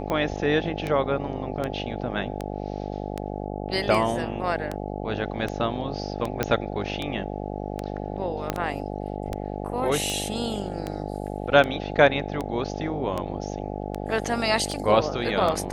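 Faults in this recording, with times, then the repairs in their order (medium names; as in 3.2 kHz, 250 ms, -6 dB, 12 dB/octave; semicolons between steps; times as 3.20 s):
buzz 50 Hz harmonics 17 -32 dBFS
tick 78 rpm -15 dBFS
6.43 s: pop -9 dBFS
8.50 s: pop -10 dBFS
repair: de-click; de-hum 50 Hz, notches 17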